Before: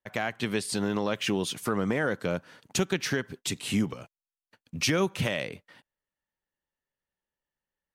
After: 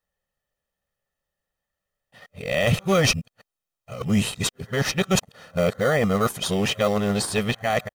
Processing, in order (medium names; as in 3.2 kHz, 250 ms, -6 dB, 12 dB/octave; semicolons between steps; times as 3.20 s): reverse the whole clip; comb 1.6 ms, depth 70%; in parallel at -9.5 dB: sample-and-hold 17×; on the sum: trim +4 dB